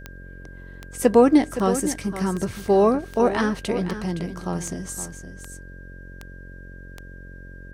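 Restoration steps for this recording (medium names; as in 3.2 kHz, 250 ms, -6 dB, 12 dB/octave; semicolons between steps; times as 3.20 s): de-click; de-hum 45.1 Hz, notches 13; band-stop 1.6 kHz, Q 30; inverse comb 516 ms -11.5 dB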